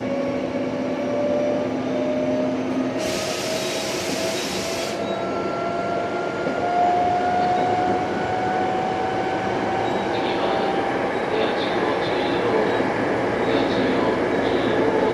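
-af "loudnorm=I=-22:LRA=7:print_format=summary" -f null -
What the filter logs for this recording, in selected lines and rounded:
Input Integrated:    -22.1 LUFS
Input True Peak:      -7.2 dBTP
Input LRA:             2.8 LU
Input Threshold:     -32.1 LUFS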